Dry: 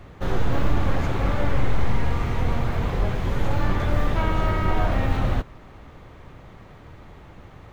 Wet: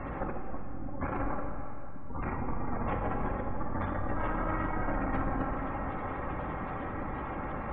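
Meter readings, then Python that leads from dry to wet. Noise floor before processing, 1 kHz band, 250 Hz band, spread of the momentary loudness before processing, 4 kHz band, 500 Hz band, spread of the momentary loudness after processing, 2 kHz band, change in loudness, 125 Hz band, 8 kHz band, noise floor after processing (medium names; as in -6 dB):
-45 dBFS, -4.5 dB, -6.0 dB, 3 LU, under -20 dB, -7.0 dB, 9 LU, -7.5 dB, -10.0 dB, -13.0 dB, no reading, -37 dBFS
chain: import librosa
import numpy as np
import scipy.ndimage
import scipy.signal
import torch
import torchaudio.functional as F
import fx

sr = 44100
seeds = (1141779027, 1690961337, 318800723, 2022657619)

y = 10.0 ** (-25.0 / 20.0) * np.tanh(x / 10.0 ** (-25.0 / 20.0))
y = fx.over_compress(y, sr, threshold_db=-33.0, ratio=-1.0)
y = fx.peak_eq(y, sr, hz=470.0, db=-4.0, octaves=0.85)
y = y + 10.0 ** (-8.0 / 20.0) * np.pad(y, (int(148 * sr / 1000.0), 0))[:len(y)]
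y = fx.spec_gate(y, sr, threshold_db=-30, keep='strong')
y = scipy.signal.sosfilt(scipy.signal.butter(2, 1700.0, 'lowpass', fs=sr, output='sos'), y)
y = fx.low_shelf(y, sr, hz=170.0, db=-11.0)
y = y + 0.34 * np.pad(y, (int(3.7 * sr / 1000.0), 0))[:len(y)]
y = fx.rev_plate(y, sr, seeds[0], rt60_s=3.4, hf_ratio=0.75, predelay_ms=0, drr_db=2.5)
y = y * 10.0 ** (6.0 / 20.0)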